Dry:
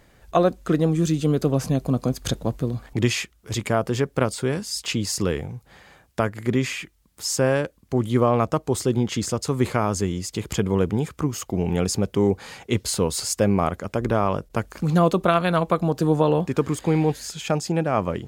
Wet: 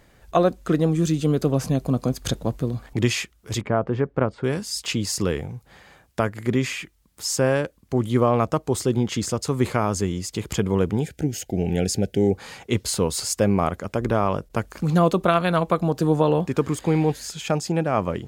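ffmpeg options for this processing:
-filter_complex "[0:a]asettb=1/sr,asplit=3[a][b][c];[a]atrim=end=3.614[d];[b]atrim=start=3.61:end=4.44,asetpts=PTS-STARTPTS,afade=t=in:d=0.004:c=qsin,afade=t=out:st=0.826:d=0.004:c=qsin,lowpass=1.6k[e];[c]atrim=start=4.436[f];[d][e]acrossfade=d=0.004:c1=hsin:c2=qsin[g];[g][f]acrossfade=d=0.004:c1=qsin:c2=hsin,asettb=1/sr,asplit=3[h][i][j];[h]atrim=end=11.014[k];[i]atrim=start=11.01:end=12.35,asetpts=PTS-STARTPTS,afade=t=in:d=0.004:c=qsin,afade=t=out:st=1.336:d=0.004:c=qsin,asuperstop=centerf=1100:order=8:qfactor=1.7[l];[j]atrim=start=12.346[m];[k][l]acrossfade=d=0.004:c1=hsin:c2=qsin[n];[n][m]acrossfade=d=0.004:c1=qsin:c2=hsin"

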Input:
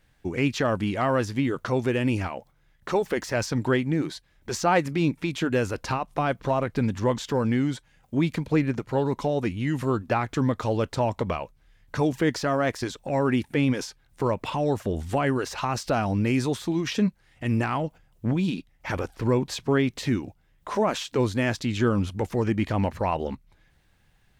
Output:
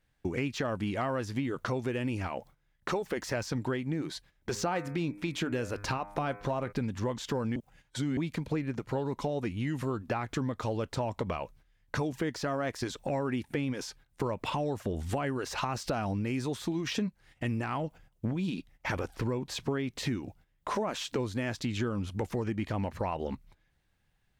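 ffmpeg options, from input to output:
-filter_complex "[0:a]asplit=3[a][b][c];[a]afade=t=out:st=4.54:d=0.02[d];[b]bandreject=f=101.6:t=h:w=4,bandreject=f=203.2:t=h:w=4,bandreject=f=304.8:t=h:w=4,bandreject=f=406.4:t=h:w=4,bandreject=f=508:t=h:w=4,bandreject=f=609.6:t=h:w=4,bandreject=f=711.2:t=h:w=4,bandreject=f=812.8:t=h:w=4,bandreject=f=914.4:t=h:w=4,bandreject=f=1.016k:t=h:w=4,bandreject=f=1.1176k:t=h:w=4,bandreject=f=1.2192k:t=h:w=4,bandreject=f=1.3208k:t=h:w=4,bandreject=f=1.4224k:t=h:w=4,bandreject=f=1.524k:t=h:w=4,bandreject=f=1.6256k:t=h:w=4,bandreject=f=1.7272k:t=h:w=4,bandreject=f=1.8288k:t=h:w=4,bandreject=f=1.9304k:t=h:w=4,bandreject=f=2.032k:t=h:w=4,bandreject=f=2.1336k:t=h:w=4,bandreject=f=2.2352k:t=h:w=4,bandreject=f=2.3368k:t=h:w=4,bandreject=f=2.4384k:t=h:w=4,bandreject=f=2.54k:t=h:w=4,afade=t=in:st=4.54:d=0.02,afade=t=out:st=6.71:d=0.02[e];[c]afade=t=in:st=6.71:d=0.02[f];[d][e][f]amix=inputs=3:normalize=0,asplit=3[g][h][i];[g]atrim=end=7.562[j];[h]atrim=start=7.558:end=8.172,asetpts=PTS-STARTPTS,areverse[k];[i]atrim=start=8.168[l];[j][k]acrossfade=d=0.004:c1=hsin:c2=hsin[m];[m][l]acrossfade=d=0.004:c1=hsin:c2=hsin,deesser=0.7,agate=range=-12dB:threshold=-52dB:ratio=16:detection=peak,acompressor=threshold=-31dB:ratio=5,volume=1.5dB"

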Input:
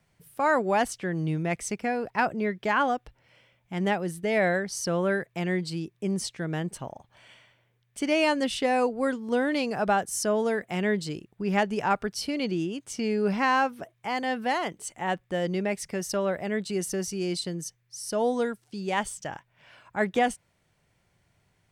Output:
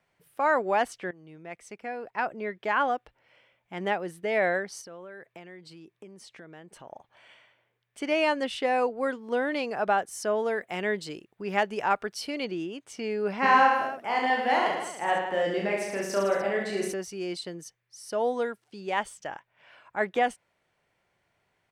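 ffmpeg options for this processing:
-filter_complex "[0:a]asettb=1/sr,asplit=3[a][b][c];[a]atrim=end=4.814[d];[b]atrim=start=4.81:end=6.92,asetpts=PTS-STARTPTS,afade=t=in:d=0.004:c=qsin,afade=t=out:st=2.106:d=0.004:c=qsin,acompressor=threshold=-38dB:ratio=10:attack=3.2:release=140:knee=1:detection=peak[e];[c]atrim=start=6.916[f];[d][e]acrossfade=d=0.004:c1=hsin:c2=qsin[g];[g][f]acrossfade=d=0.004:c1=qsin:c2=hsin,asettb=1/sr,asplit=3[h][i][j];[h]atrim=end=10.564[k];[i]atrim=start=10.56:end=12.45,asetpts=PTS-STARTPTS,afade=t=in:d=0.004:c=qsin,afade=t=out:st=1.886:d=0.004:c=qsin,highshelf=f=4.3k:g=5.5[l];[j]atrim=start=12.446[m];[k][l]acrossfade=d=0.004:c1=hsin:c2=qsin[n];[n][m]acrossfade=d=0.004:c1=qsin:c2=hsin,asplit=3[o][p][q];[o]afade=t=out:st=13.42:d=0.02[r];[p]aecho=1:1:30|66|109.2|161|223.2|297.9:0.794|0.631|0.501|0.398|0.316|0.251,afade=t=in:st=13.42:d=0.02,afade=t=out:st=16.92:d=0.02[s];[q]afade=t=in:st=16.92:d=0.02[t];[r][s][t]amix=inputs=3:normalize=0,asplit=2[u][v];[u]atrim=end=1.11,asetpts=PTS-STARTPTS,afade=t=out:st=1.106:d=0.004:c=hsin:silence=0.11885[w];[v]atrim=start=1.11,asetpts=PTS-STARTPTS,afade=t=in:d=1.81:silence=0.11885[x];[w][x]concat=n=2:v=0:a=1,bass=f=250:g=-13,treble=f=4k:g=-9"

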